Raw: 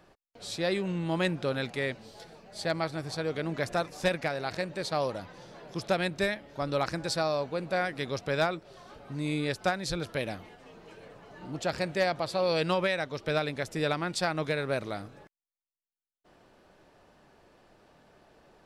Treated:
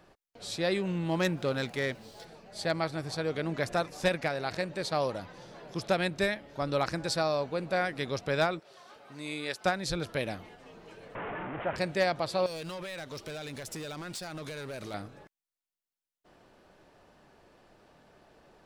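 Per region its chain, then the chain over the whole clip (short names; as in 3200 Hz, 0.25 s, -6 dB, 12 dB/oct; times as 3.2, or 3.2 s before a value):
0.86–2.25 self-modulated delay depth 0.05 ms + sample gate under -57 dBFS
8.6–9.65 HPF 720 Hz 6 dB/oct + short-mantissa float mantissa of 6-bit
11.15–11.76 delta modulation 16 kbps, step -28.5 dBFS + LPF 1900 Hz + low shelf 300 Hz -7.5 dB
12.46–14.94 high shelf 4200 Hz +11.5 dB + compressor 8:1, threshold -32 dBFS + hard clip -36 dBFS
whole clip: dry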